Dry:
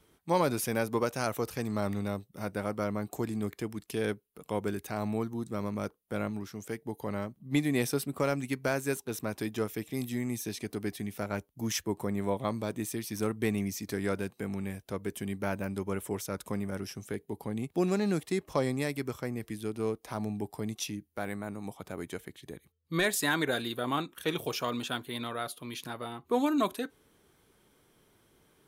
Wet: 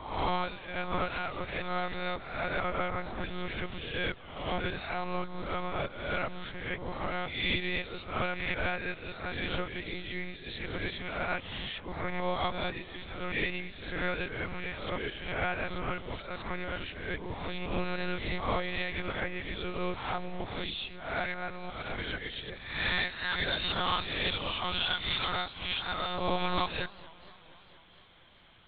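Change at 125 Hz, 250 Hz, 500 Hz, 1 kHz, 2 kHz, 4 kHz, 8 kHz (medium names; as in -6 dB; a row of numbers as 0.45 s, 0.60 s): -3.5 dB, -7.5 dB, -4.0 dB, +2.5 dB, +5.0 dB, +7.0 dB, under -40 dB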